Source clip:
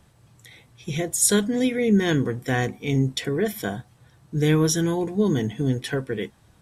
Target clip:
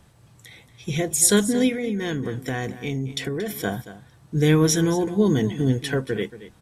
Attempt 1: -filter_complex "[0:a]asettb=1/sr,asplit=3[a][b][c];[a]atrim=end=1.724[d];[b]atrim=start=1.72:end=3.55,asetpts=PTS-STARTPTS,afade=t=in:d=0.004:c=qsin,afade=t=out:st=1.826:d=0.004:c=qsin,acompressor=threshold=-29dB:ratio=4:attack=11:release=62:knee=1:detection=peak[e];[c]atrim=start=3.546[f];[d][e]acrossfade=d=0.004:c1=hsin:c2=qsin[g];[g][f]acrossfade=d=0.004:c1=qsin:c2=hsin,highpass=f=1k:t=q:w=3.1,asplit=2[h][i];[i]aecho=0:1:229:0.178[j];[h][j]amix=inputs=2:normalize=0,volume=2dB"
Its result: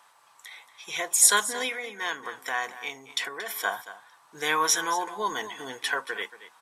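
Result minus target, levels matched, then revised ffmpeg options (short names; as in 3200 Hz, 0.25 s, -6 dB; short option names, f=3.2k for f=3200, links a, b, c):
1000 Hz band +10.0 dB
-filter_complex "[0:a]asettb=1/sr,asplit=3[a][b][c];[a]atrim=end=1.724[d];[b]atrim=start=1.72:end=3.55,asetpts=PTS-STARTPTS,afade=t=in:d=0.004:c=qsin,afade=t=out:st=1.826:d=0.004:c=qsin,acompressor=threshold=-29dB:ratio=4:attack=11:release=62:knee=1:detection=peak[e];[c]atrim=start=3.546[f];[d][e]acrossfade=d=0.004:c1=hsin:c2=qsin[g];[g][f]acrossfade=d=0.004:c1=qsin:c2=hsin,asplit=2[h][i];[i]aecho=0:1:229:0.178[j];[h][j]amix=inputs=2:normalize=0,volume=2dB"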